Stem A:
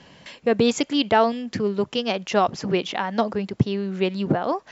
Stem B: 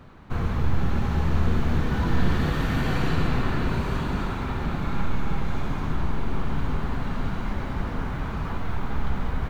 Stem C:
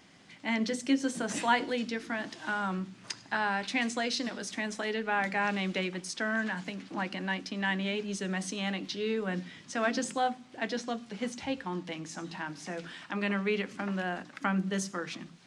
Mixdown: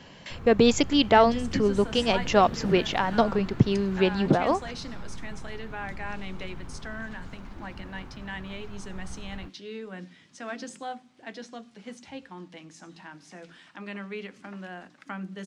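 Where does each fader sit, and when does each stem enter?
0.0, −15.0, −7.0 decibels; 0.00, 0.00, 0.65 seconds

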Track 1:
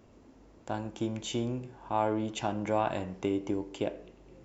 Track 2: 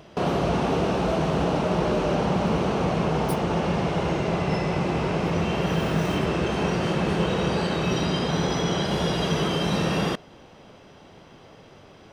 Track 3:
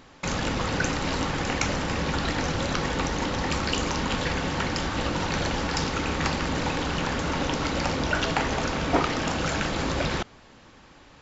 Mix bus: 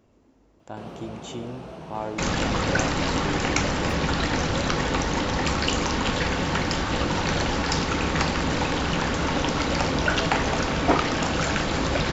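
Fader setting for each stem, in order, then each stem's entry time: −3.0, −16.0, +2.5 decibels; 0.00, 0.60, 1.95 seconds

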